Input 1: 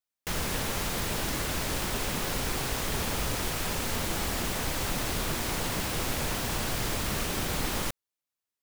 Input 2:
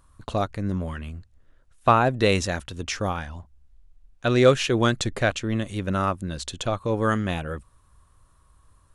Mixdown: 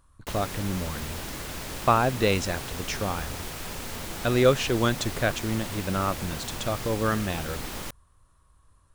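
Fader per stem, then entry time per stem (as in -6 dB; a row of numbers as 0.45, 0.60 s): -5.0, -3.0 dB; 0.00, 0.00 s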